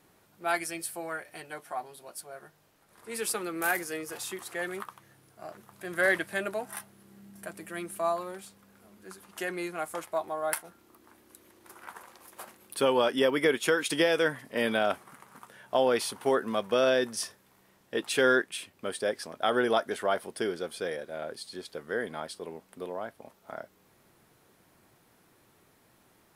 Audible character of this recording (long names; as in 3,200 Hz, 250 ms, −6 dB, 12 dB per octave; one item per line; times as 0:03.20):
background noise floor −64 dBFS
spectral slope −3.0 dB per octave